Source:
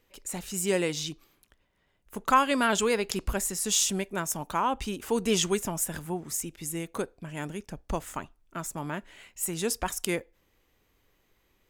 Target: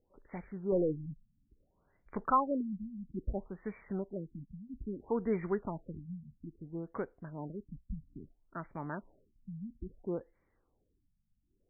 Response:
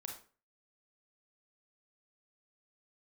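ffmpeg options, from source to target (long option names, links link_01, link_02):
-filter_complex "[0:a]asettb=1/sr,asplit=3[link_01][link_02][link_03];[link_01]atrim=end=0.724[link_04];[link_02]atrim=start=0.72:end=2.26,asetpts=PTS-STARTPTS,afade=type=in:duration=0.004:curve=qsin,afade=type=out:start_time=1.536:duration=0.004:curve=qsin,aeval=exprs='0.2*(cos(1*acos(clip(val(0)/0.2,-1,1)))-cos(1*PI/2))+0.0316*(cos(4*acos(clip(val(0)/0.2,-1,1)))-cos(4*PI/2))+0.0398*(cos(5*acos(clip(val(0)/0.2,-1,1)))-cos(5*PI/2))+0.0282*(cos(6*acos(clip(val(0)/0.2,-1,1)))-cos(6*PI/2))':channel_layout=same[link_05];[link_03]atrim=start=2.256[link_06];[link_04][link_05]acrossfade=duration=0.004:curve1=hsin:curve2=qsin[link_07];[link_07][link_06]acrossfade=duration=0.004:curve1=qsin:curve2=hsin,afftfilt=real='re*lt(b*sr/1024,230*pow(2400/230,0.5+0.5*sin(2*PI*0.6*pts/sr)))':imag='im*lt(b*sr/1024,230*pow(2400/230,0.5+0.5*sin(2*PI*0.6*pts/sr)))':win_size=1024:overlap=0.75,volume=-5.5dB"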